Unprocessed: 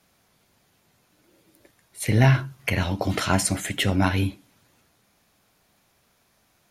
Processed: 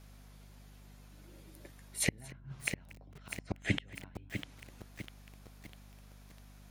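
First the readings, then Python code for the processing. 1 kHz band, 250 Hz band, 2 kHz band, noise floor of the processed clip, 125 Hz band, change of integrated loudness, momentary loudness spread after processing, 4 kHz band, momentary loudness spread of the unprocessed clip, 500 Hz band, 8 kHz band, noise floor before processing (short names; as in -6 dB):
-24.5 dB, -16.0 dB, -11.5 dB, -56 dBFS, -20.0 dB, -16.0 dB, 23 LU, -13.0 dB, 8 LU, -18.0 dB, -10.5 dB, -66 dBFS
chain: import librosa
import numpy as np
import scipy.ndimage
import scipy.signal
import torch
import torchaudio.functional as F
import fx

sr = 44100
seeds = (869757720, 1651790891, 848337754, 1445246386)

y = fx.env_lowpass_down(x, sr, base_hz=3000.0, full_db=-20.5)
y = fx.gate_flip(y, sr, shuts_db=-17.0, range_db=-38)
y = fx.add_hum(y, sr, base_hz=50, snr_db=11)
y = y + 10.0 ** (-21.0 / 20.0) * np.pad(y, (int(234 * sr / 1000.0), 0))[:len(y)]
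y = fx.echo_crushed(y, sr, ms=650, feedback_pct=55, bits=8, wet_db=-7.5)
y = y * 10.0 ** (1.0 / 20.0)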